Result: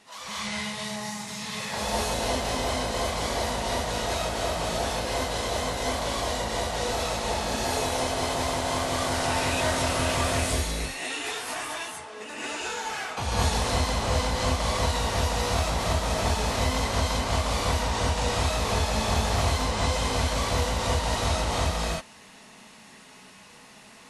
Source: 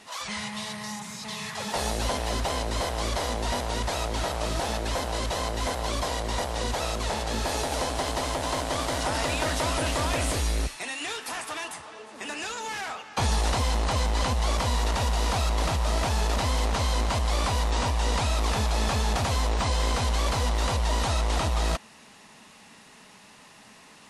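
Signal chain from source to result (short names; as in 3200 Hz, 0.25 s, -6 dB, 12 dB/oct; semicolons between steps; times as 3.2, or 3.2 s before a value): non-linear reverb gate 0.26 s rising, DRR -7.5 dB; gain -6.5 dB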